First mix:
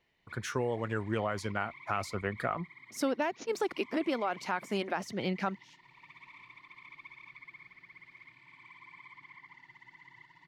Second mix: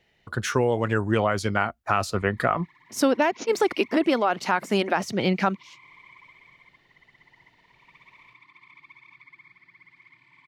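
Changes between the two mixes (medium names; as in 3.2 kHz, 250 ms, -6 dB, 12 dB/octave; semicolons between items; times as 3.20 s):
speech +10.0 dB; background: entry +1.85 s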